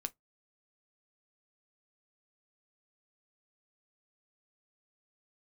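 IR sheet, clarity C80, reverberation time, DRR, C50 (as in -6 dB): 43.5 dB, 0.15 s, 10.0 dB, 29.5 dB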